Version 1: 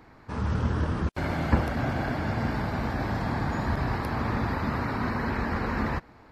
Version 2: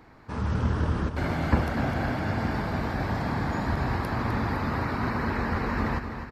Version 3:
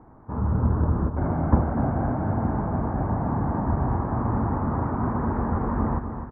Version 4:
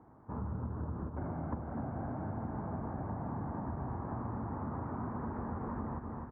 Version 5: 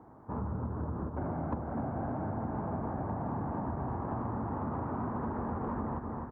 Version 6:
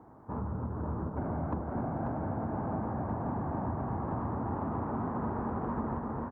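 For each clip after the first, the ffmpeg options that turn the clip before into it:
-af "aecho=1:1:255|510|765|1020|1275|1530|1785:0.355|0.202|0.115|0.0657|0.0375|0.0213|0.0122"
-af "lowpass=f=1100:w=0.5412,lowpass=f=1100:w=1.3066,equalizer=f=490:t=o:w=0.77:g=-3,volume=1.58"
-af "highpass=68,acompressor=threshold=0.0447:ratio=6,volume=0.398"
-filter_complex "[0:a]equalizer=f=590:t=o:w=2.7:g=4,asplit=2[s0][s1];[s1]asoftclip=type=tanh:threshold=0.0211,volume=0.266[s2];[s0][s2]amix=inputs=2:normalize=0"
-af "aecho=1:1:540:0.562"

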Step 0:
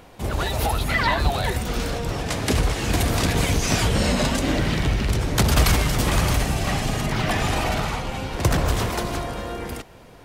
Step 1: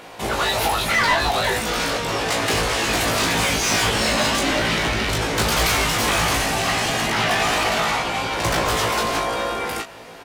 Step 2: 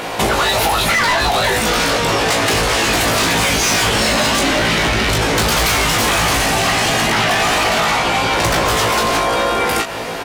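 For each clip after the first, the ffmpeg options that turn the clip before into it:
-filter_complex "[0:a]asplit=2[s0][s1];[s1]highpass=f=720:p=1,volume=14.1,asoftclip=type=tanh:threshold=0.531[s2];[s0][s2]amix=inputs=2:normalize=0,lowpass=f=6900:p=1,volume=0.501,asplit=2[s3][s4];[s4]aecho=0:1:18|36:0.668|0.422[s5];[s3][s5]amix=inputs=2:normalize=0,volume=0.422"
-af "aeval=exprs='0.376*sin(PI/2*1.78*val(0)/0.376)':c=same,acompressor=threshold=0.1:ratio=12,volume=2.24"

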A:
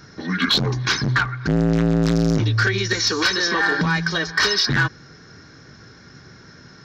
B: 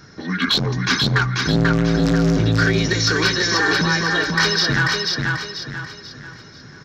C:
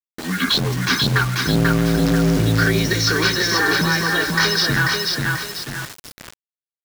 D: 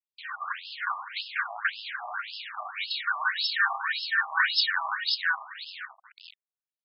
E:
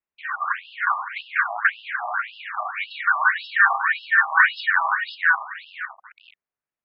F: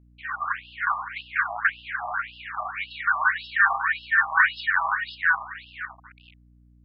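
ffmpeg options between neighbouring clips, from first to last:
-af "aecho=1:1:489|978|1467|1956|2445:0.708|0.276|0.108|0.042|0.0164"
-af "acrusher=bits=4:mix=0:aa=0.000001"
-af "afftfilt=real='re*between(b*sr/1024,860*pow(3800/860,0.5+0.5*sin(2*PI*1.8*pts/sr))/1.41,860*pow(3800/860,0.5+0.5*sin(2*PI*1.8*pts/sr))*1.41)':imag='im*between(b*sr/1024,860*pow(3800/860,0.5+0.5*sin(2*PI*1.8*pts/sr))/1.41,860*pow(3800/860,0.5+0.5*sin(2*PI*1.8*pts/sr))*1.41)':win_size=1024:overlap=0.75,volume=0.75"
-af "lowpass=f=2300:w=0.5412,lowpass=f=2300:w=1.3066,volume=2.82"
-af "aeval=exprs='val(0)+0.00282*(sin(2*PI*60*n/s)+sin(2*PI*2*60*n/s)/2+sin(2*PI*3*60*n/s)/3+sin(2*PI*4*60*n/s)/4+sin(2*PI*5*60*n/s)/5)':c=same,volume=0.708"

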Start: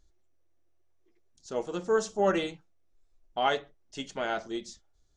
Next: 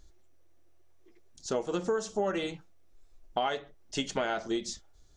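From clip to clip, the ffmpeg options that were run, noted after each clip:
-af "acompressor=threshold=0.0158:ratio=10,volume=2.82"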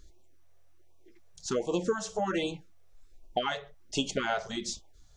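-af "afftfilt=real='re*(1-between(b*sr/1024,250*pow(1700/250,0.5+0.5*sin(2*PI*1.3*pts/sr))/1.41,250*pow(1700/250,0.5+0.5*sin(2*PI*1.3*pts/sr))*1.41))':imag='im*(1-between(b*sr/1024,250*pow(1700/250,0.5+0.5*sin(2*PI*1.3*pts/sr))/1.41,250*pow(1700/250,0.5+0.5*sin(2*PI*1.3*pts/sr))*1.41))':win_size=1024:overlap=0.75,volume=1.33"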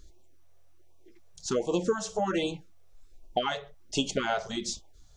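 -af "equalizer=f=1800:t=o:w=0.77:g=-3,volume=1.26"

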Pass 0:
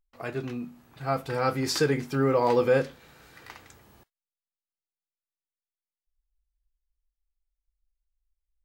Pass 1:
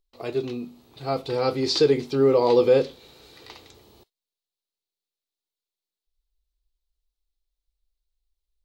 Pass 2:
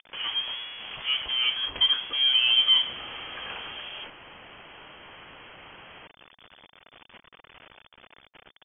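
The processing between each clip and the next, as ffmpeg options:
-filter_complex "[0:a]acrossover=split=6200[s0][s1];[s1]acompressor=threshold=0.001:ratio=4:attack=1:release=60[s2];[s0][s2]amix=inputs=2:normalize=0,equalizer=f=160:t=o:w=0.67:g=-4,equalizer=f=400:t=o:w=0.67:g=8,equalizer=f=1600:t=o:w=0.67:g=-10,equalizer=f=4000:t=o:w=0.67:g=11,volume=1.12"
-af "aeval=exprs='val(0)+0.5*0.0531*sgn(val(0))':c=same,highpass=420,lowpass=f=3100:t=q:w=0.5098,lowpass=f=3100:t=q:w=0.6013,lowpass=f=3100:t=q:w=0.9,lowpass=f=3100:t=q:w=2.563,afreqshift=-3600,volume=0.75"

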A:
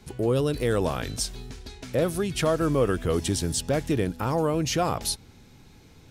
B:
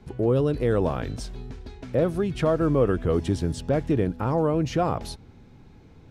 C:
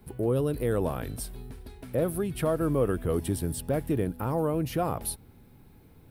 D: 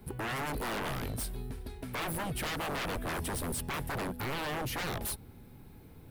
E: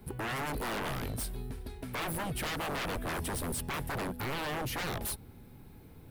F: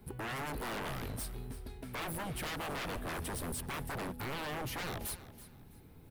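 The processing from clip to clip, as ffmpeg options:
-af "lowpass=f=1100:p=1,volume=1.33"
-af "aexciter=amount=12.2:drive=6.6:freq=9300,volume=0.596"
-af "aeval=exprs='0.0251*(abs(mod(val(0)/0.0251+3,4)-2)-1)':c=same,volume=1.26"
-af anull
-af "aecho=1:1:328|656|984:0.168|0.0453|0.0122,volume=0.631"

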